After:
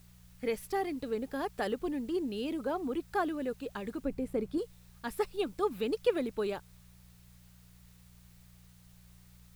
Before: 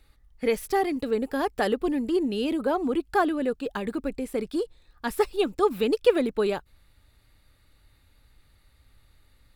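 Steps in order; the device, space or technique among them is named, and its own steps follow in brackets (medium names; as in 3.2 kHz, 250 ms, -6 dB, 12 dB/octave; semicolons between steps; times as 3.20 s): video cassette with head-switching buzz (mains buzz 60 Hz, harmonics 3, -50 dBFS -1 dB/octave; white noise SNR 29 dB); 4.05–4.58 s: tilt shelf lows +5.5 dB, about 1.3 kHz; trim -8.5 dB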